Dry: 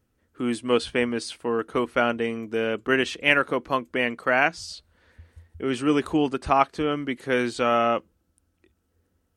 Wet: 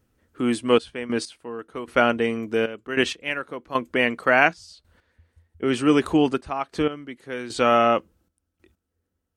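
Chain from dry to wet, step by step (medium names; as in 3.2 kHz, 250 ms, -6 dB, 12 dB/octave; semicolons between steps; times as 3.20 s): trance gate "xxxxx..x...." 96 bpm -12 dB; trim +3.5 dB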